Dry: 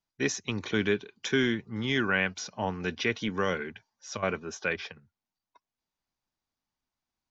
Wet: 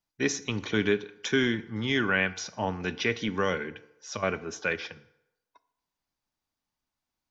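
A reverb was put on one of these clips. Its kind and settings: FDN reverb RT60 0.85 s, low-frequency decay 0.75×, high-frequency decay 0.7×, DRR 13 dB; gain +1 dB

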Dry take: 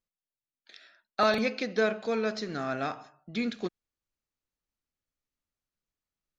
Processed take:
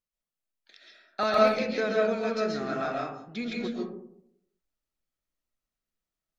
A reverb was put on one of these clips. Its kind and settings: digital reverb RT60 0.74 s, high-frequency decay 0.3×, pre-delay 95 ms, DRR -2.5 dB; gain -3.5 dB

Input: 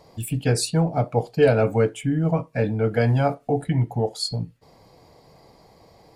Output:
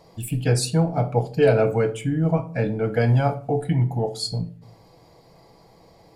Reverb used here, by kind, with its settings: shoebox room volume 420 m³, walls furnished, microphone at 0.71 m; gain -1 dB

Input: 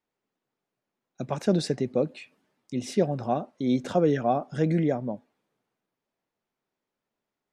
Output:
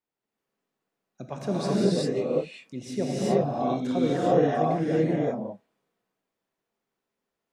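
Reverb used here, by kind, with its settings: non-linear reverb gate 0.42 s rising, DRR -7.5 dB; gain -6.5 dB

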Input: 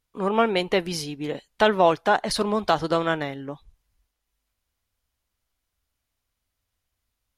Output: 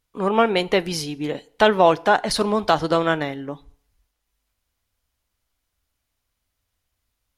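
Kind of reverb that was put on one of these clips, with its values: FDN reverb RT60 0.61 s, low-frequency decay 0.8×, high-frequency decay 0.85×, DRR 19 dB; gain +3 dB

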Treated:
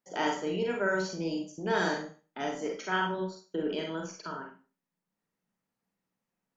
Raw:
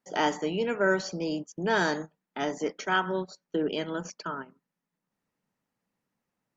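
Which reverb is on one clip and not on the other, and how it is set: Schroeder reverb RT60 0.35 s, combs from 33 ms, DRR 1 dB; gain -5.5 dB

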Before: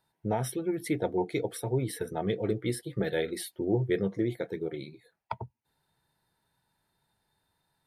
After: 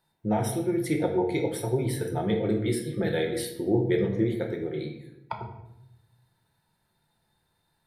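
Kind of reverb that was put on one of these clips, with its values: shoebox room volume 250 m³, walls mixed, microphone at 0.86 m; gain +1 dB

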